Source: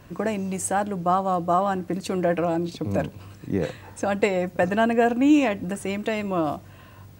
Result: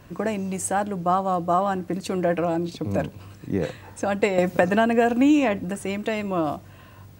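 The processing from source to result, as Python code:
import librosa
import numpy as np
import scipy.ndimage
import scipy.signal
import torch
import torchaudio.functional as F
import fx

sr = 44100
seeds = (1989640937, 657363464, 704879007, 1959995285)

y = fx.band_squash(x, sr, depth_pct=100, at=(4.38, 5.59))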